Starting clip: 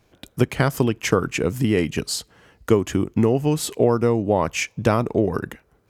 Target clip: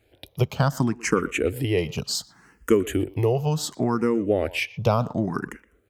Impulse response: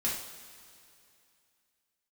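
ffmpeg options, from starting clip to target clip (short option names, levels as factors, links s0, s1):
-filter_complex "[0:a]asettb=1/sr,asplit=3[s0][s1][s2];[s0]atrim=end=2.154[s3];[s1]atrim=start=2.15:end=3.36,asetpts=PTS-STARTPTS,afade=t=in:d=0.004:c=qsin,afade=t=out:st=1.206:d=0.004:c=qsin,highshelf=f=9500:g=9[s4];[s2]atrim=start=3.356[s5];[s3][s4]acrossfade=d=0.004:c1=hsin:c2=qsin[s6];[s6][s5]acrossfade=d=0.004:c1=qsin:c2=hsin,asplit=2[s7][s8];[s8]adelay=120,highpass=300,lowpass=3400,asoftclip=type=hard:threshold=0.224,volume=0.126[s9];[s7][s9]amix=inputs=2:normalize=0,asplit=2[s10][s11];[s11]afreqshift=0.68[s12];[s10][s12]amix=inputs=2:normalize=1"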